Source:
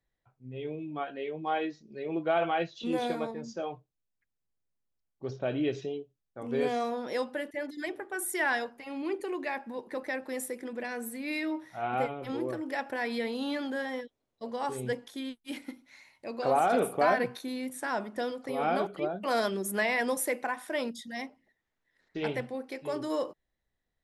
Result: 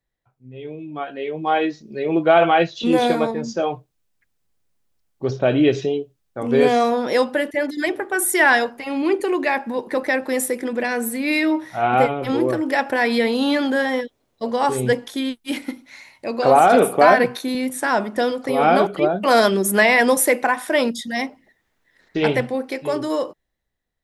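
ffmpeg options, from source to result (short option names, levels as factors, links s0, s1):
-filter_complex "[0:a]asettb=1/sr,asplit=3[s0][s1][s2];[s0]atrim=end=16.724[s3];[s1]atrim=start=16.72:end=17.55,asetpts=PTS-STARTPTS,afade=t=in:d=0.004:c=qsin,afade=t=out:st=0.826:d=0.004:c=qsin,highpass=140[s4];[s2]atrim=start=17.546[s5];[s3][s4]acrossfade=d=0.004:c1=hsin:c2=qsin[s6];[s6][s5]acrossfade=d=0.004:c1=qsin:c2=hsin,dynaudnorm=f=290:g=9:m=3.98,volume=1.26"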